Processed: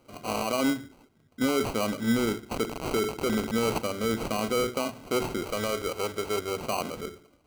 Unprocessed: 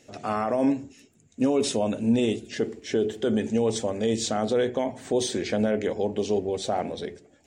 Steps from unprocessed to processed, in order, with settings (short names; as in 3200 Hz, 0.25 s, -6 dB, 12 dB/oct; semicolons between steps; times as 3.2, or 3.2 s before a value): 2.51–3.78 switching spikes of -21.5 dBFS; sample-and-hold 25×; 5.44–6.51 bell 220 Hz -9 dB 0.77 oct; gain -3 dB